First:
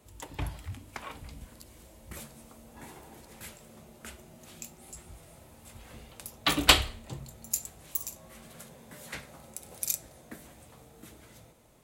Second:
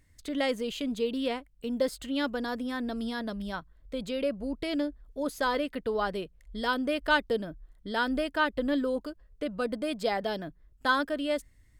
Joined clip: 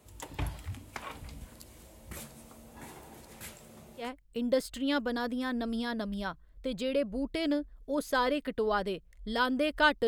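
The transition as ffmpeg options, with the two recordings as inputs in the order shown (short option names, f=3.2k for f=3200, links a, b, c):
-filter_complex "[0:a]apad=whole_dur=10.07,atrim=end=10.07,atrim=end=4.11,asetpts=PTS-STARTPTS[a];[1:a]atrim=start=1.25:end=7.35,asetpts=PTS-STARTPTS[b];[a][b]acrossfade=d=0.14:c1=tri:c2=tri"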